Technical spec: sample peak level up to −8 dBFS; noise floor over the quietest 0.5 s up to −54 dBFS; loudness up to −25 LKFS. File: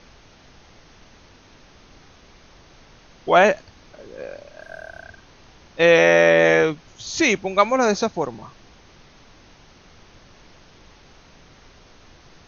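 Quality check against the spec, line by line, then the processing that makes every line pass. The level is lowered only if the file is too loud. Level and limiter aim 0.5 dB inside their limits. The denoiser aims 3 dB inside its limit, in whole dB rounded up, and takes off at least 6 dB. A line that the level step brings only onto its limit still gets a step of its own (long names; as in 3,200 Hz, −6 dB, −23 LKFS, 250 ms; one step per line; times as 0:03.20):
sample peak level −2.5 dBFS: out of spec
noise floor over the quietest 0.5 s −50 dBFS: out of spec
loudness −17.5 LKFS: out of spec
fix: level −8 dB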